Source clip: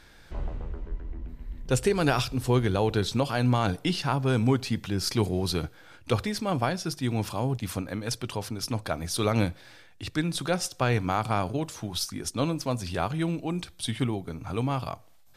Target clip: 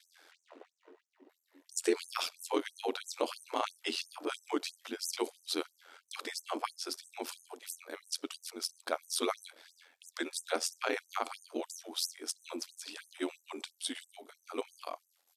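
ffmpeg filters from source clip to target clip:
-af "bass=f=250:g=3,treble=f=4000:g=2,aeval=exprs='val(0)*sin(2*PI*44*n/s)':c=same,asetrate=42845,aresample=44100,atempo=1.0293,afftfilt=real='re*gte(b*sr/1024,230*pow(6100/230,0.5+0.5*sin(2*PI*3*pts/sr)))':imag='im*gte(b*sr/1024,230*pow(6100/230,0.5+0.5*sin(2*PI*3*pts/sr)))':win_size=1024:overlap=0.75,volume=0.794"

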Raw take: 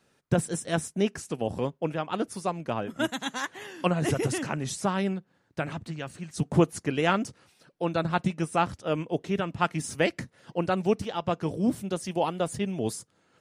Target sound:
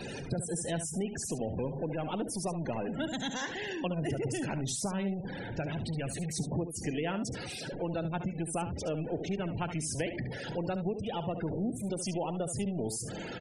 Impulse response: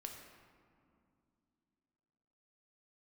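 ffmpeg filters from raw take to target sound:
-af "aeval=exprs='val(0)+0.5*0.0531*sgn(val(0))':c=same,equalizer=f=1200:t=o:w=0.61:g=-8,acompressor=threshold=0.0631:ratio=6,afftfilt=real='re*gte(hypot(re,im),0.0282)':imag='im*gte(hypot(re,im),0.0282)':win_size=1024:overlap=0.75,aecho=1:1:71:0.299,volume=0.501"

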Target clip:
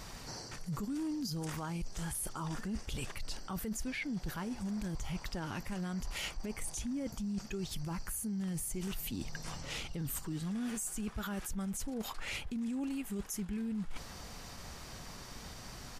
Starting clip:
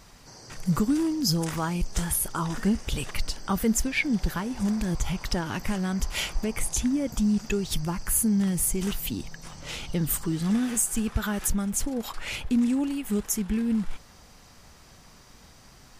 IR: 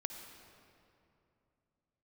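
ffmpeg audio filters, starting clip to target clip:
-af "alimiter=limit=0.0841:level=0:latency=1:release=11,areverse,acompressor=threshold=0.00708:ratio=4,areverse,asetrate=42845,aresample=44100,atempo=1.0293,volume=1.68"

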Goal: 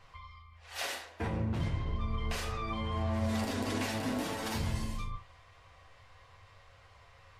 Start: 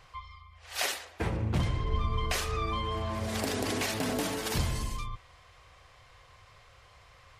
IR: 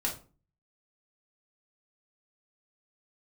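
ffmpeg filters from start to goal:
-filter_complex "[0:a]highshelf=f=4700:g=-5.5,alimiter=limit=0.0668:level=0:latency=1:release=78,asplit=2[s0][s1];[1:a]atrim=start_sample=2205,atrim=end_sample=3528,adelay=9[s2];[s1][s2]afir=irnorm=-1:irlink=0,volume=0.531[s3];[s0][s3]amix=inputs=2:normalize=0,volume=0.631"

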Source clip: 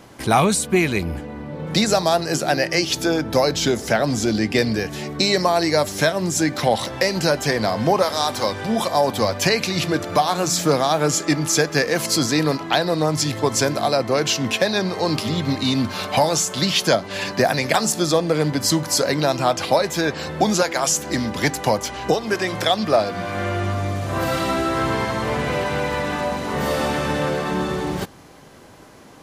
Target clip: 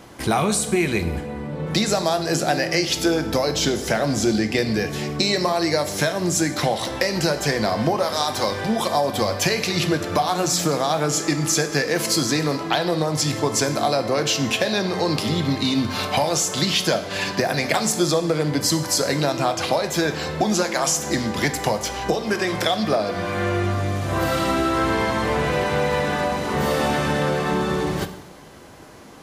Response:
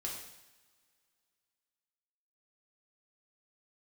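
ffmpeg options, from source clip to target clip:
-filter_complex "[0:a]acompressor=threshold=0.126:ratio=6,asplit=2[s0][s1];[1:a]atrim=start_sample=2205[s2];[s1][s2]afir=irnorm=-1:irlink=0,volume=0.668[s3];[s0][s3]amix=inputs=2:normalize=0,volume=0.794"

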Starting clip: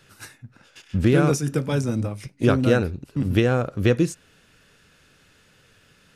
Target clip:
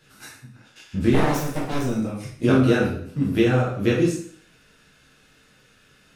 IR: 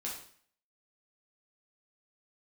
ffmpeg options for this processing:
-filter_complex "[0:a]asplit=3[s0][s1][s2];[s0]afade=t=out:st=1.13:d=0.02[s3];[s1]aeval=exprs='abs(val(0))':c=same,afade=t=in:st=1.13:d=0.02,afade=t=out:st=1.83:d=0.02[s4];[s2]afade=t=in:st=1.83:d=0.02[s5];[s3][s4][s5]amix=inputs=3:normalize=0[s6];[1:a]atrim=start_sample=2205[s7];[s6][s7]afir=irnorm=-1:irlink=0"

